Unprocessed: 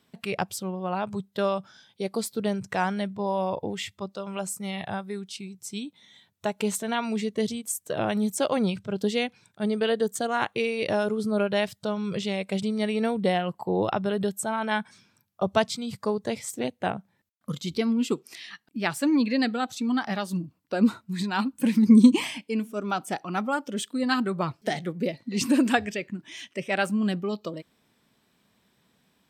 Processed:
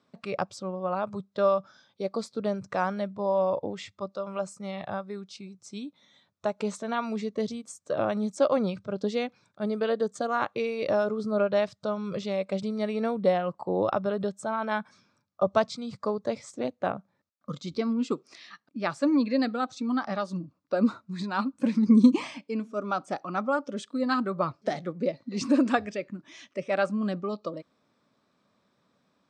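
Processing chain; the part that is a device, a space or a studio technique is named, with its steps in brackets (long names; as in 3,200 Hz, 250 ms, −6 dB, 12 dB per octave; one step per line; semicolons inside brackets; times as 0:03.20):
car door speaker (loudspeaker in its box 80–6,600 Hz, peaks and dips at 280 Hz +4 dB, 570 Hz +9 dB, 1,200 Hz +9 dB, 1,900 Hz −3 dB, 3,000 Hz −7 dB)
level −4.5 dB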